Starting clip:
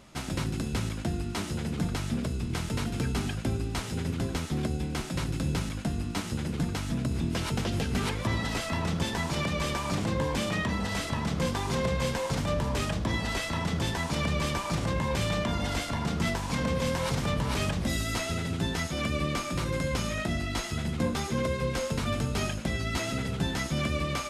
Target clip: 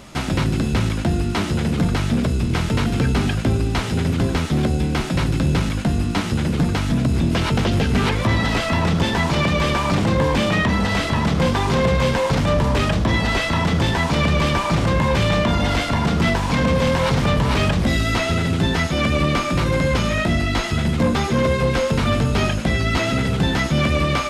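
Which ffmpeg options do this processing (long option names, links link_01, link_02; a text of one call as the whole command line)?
ffmpeg -i in.wav -filter_complex "[0:a]acrossover=split=4500[link_01][link_02];[link_02]acompressor=threshold=-51dB:ratio=4:attack=1:release=60[link_03];[link_01][link_03]amix=inputs=2:normalize=0,asplit=2[link_04][link_05];[link_05]aeval=exprs='0.168*sin(PI/2*2.51*val(0)/0.168)':channel_layout=same,volume=-11dB[link_06];[link_04][link_06]amix=inputs=2:normalize=0,volume=6dB" out.wav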